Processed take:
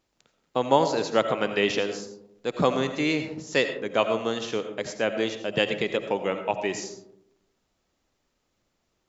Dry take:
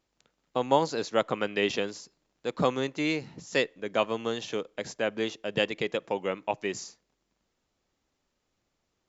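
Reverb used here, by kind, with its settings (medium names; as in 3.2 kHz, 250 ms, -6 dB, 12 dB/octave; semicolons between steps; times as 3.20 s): algorithmic reverb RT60 0.79 s, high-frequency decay 0.3×, pre-delay 45 ms, DRR 8 dB; trim +3 dB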